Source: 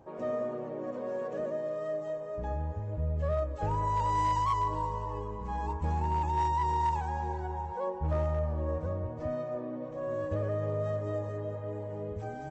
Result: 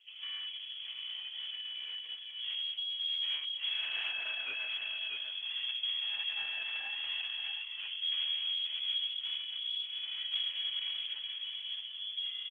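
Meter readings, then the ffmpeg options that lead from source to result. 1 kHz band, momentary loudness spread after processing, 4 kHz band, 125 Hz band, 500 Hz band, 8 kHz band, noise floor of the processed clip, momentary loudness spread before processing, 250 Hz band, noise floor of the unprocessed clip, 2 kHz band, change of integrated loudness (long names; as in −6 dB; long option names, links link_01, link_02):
−28.0 dB, 7 LU, +26.0 dB, below −40 dB, below −30 dB, can't be measured, −45 dBFS, 9 LU, below −35 dB, −40 dBFS, +8.5 dB, −1.5 dB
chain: -filter_complex "[0:a]acrossover=split=2500[link_01][link_02];[link_01]volume=31dB,asoftclip=hard,volume=-31dB[link_03];[link_03][link_02]amix=inputs=2:normalize=0,afreqshift=-200,asubboost=boost=2.5:cutoff=160,aecho=1:1:632:0.447,lowpass=frequency=2900:width_type=q:width=0.5098,lowpass=frequency=2900:width_type=q:width=0.6013,lowpass=frequency=2900:width_type=q:width=0.9,lowpass=frequency=2900:width_type=q:width=2.563,afreqshift=-3400,volume=-6.5dB" -ar 48000 -c:a libopus -b:a 10k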